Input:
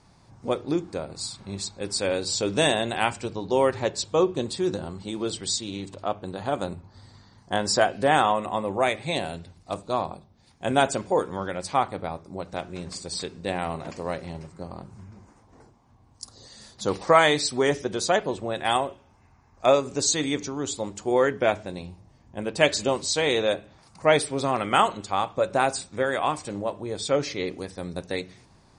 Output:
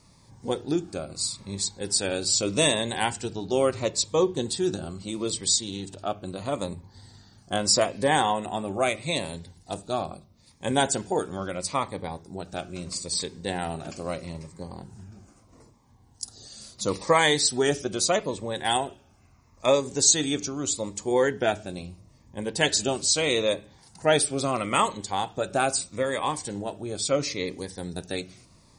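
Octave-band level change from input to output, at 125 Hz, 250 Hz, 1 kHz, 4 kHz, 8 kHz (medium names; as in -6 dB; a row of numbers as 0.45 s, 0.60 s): 0.0 dB, -0.5 dB, -3.0 dB, +2.0 dB, +5.5 dB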